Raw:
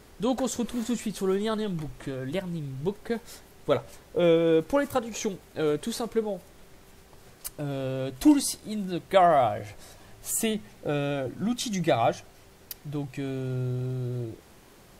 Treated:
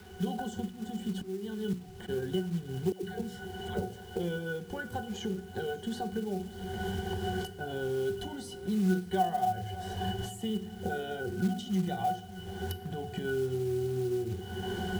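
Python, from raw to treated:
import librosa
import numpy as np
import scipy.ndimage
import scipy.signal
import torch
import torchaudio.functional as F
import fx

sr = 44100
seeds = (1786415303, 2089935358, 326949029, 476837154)

p1 = fx.recorder_agc(x, sr, target_db=-17.0, rise_db_per_s=41.0, max_gain_db=30)
p2 = fx.high_shelf(p1, sr, hz=2200.0, db=9.0)
p3 = fx.octave_resonator(p2, sr, note='F#', decay_s=0.18)
p4 = fx.rev_fdn(p3, sr, rt60_s=0.71, lf_ratio=1.3, hf_ratio=0.9, size_ms=14.0, drr_db=10.5)
p5 = fx.auto_swell(p4, sr, attack_ms=586.0, at=(0.68, 2.08), fade=0.02)
p6 = fx.high_shelf(p5, sr, hz=6800.0, db=12.0)
p7 = fx.hum_notches(p6, sr, base_hz=60, count=7)
p8 = fx.dispersion(p7, sr, late='lows', ms=107.0, hz=700.0, at=(2.92, 4.16))
p9 = p8 + fx.echo_single(p8, sr, ms=584, db=-21.0, dry=0)
p10 = fx.quant_companded(p9, sr, bits=6)
p11 = fx.band_squash(p10, sr, depth_pct=40)
y = p11 * 10.0 ** (4.5 / 20.0)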